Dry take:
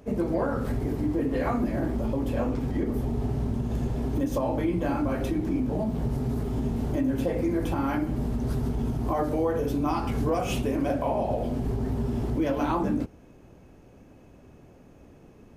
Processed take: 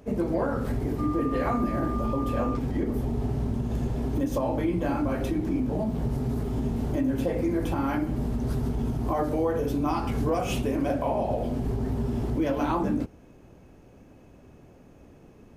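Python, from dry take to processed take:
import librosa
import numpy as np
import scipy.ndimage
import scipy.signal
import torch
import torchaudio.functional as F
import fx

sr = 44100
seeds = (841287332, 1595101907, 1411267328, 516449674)

y = fx.dmg_tone(x, sr, hz=1200.0, level_db=-34.0, at=(0.98, 2.56), fade=0.02)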